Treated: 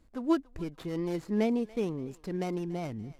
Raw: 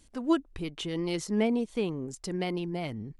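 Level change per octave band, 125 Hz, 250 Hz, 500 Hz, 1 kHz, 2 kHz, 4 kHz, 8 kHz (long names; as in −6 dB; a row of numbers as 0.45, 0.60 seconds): −1.0 dB, −1.0 dB, −1.0 dB, −1.5 dB, −5.5 dB, −10.0 dB, below −10 dB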